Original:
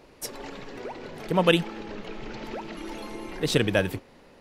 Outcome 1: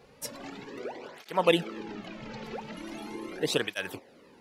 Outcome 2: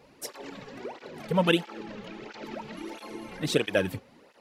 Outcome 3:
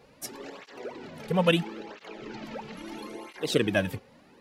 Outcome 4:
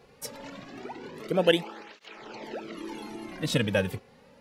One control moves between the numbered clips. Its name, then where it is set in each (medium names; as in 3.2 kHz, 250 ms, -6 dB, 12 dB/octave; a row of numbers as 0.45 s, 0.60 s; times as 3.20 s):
cancelling through-zero flanger, nulls at: 0.4 Hz, 1.5 Hz, 0.75 Hz, 0.25 Hz